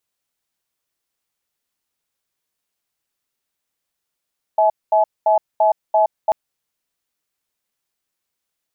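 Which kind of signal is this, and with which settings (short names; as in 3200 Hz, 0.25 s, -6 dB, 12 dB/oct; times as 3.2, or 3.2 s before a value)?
cadence 646 Hz, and 851 Hz, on 0.12 s, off 0.22 s, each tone -14 dBFS 1.74 s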